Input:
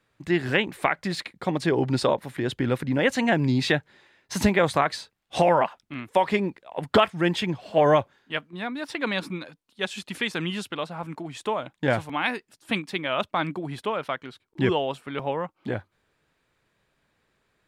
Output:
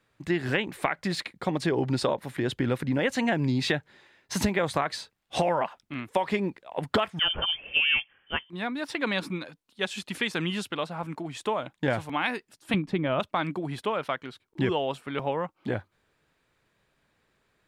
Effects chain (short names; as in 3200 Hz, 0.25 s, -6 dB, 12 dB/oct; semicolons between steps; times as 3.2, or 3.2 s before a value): 12.74–13.2 tilt -4 dB/oct; compressor 4:1, threshold -22 dBFS, peak gain reduction 8 dB; 7.19–8.5 inverted band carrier 3300 Hz